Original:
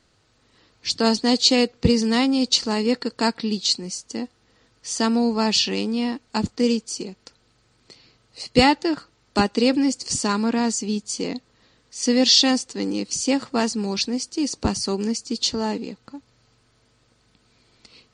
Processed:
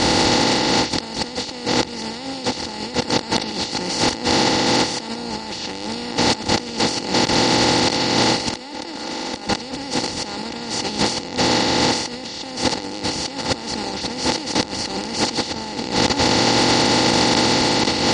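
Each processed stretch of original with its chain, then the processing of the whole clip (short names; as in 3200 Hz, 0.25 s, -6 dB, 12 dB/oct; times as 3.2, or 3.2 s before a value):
8.5–9.48 steep high-pass 200 Hz 72 dB/oct + comb 3.5 ms, depth 38% + fast leveller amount 50%
whole clip: per-bin compression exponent 0.2; notches 50/100/150/200 Hz; negative-ratio compressor -17 dBFS, ratio -0.5; gain -3.5 dB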